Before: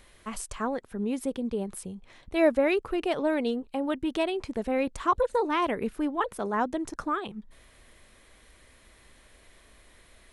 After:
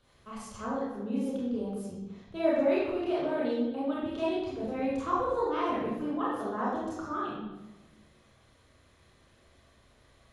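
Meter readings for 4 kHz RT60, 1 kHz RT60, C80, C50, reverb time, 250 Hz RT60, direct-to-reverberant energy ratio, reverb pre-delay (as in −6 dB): 0.80 s, 1.0 s, 2.5 dB, −2.0 dB, 1.1 s, 1.4 s, −7.5 dB, 26 ms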